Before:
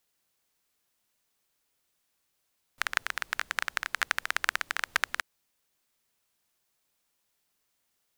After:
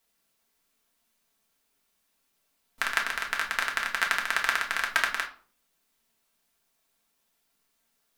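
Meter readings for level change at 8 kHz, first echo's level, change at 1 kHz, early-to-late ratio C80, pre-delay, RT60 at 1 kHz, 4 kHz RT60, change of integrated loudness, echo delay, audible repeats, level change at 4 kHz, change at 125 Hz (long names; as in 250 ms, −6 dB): +2.0 dB, no echo audible, +4.5 dB, 16.0 dB, 4 ms, 0.45 s, 0.30 s, +3.5 dB, no echo audible, no echo audible, +3.0 dB, can't be measured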